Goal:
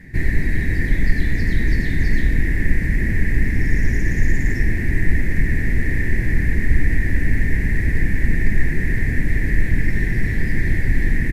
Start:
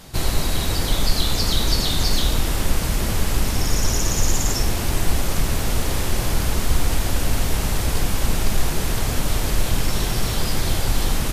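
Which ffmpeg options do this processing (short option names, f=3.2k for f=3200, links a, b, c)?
-af "firequalizer=gain_entry='entry(300,0);entry(570,-16);entry(1300,-25);entry(1800,12);entry(3000,-23)':delay=0.05:min_phase=1,volume=3.5dB"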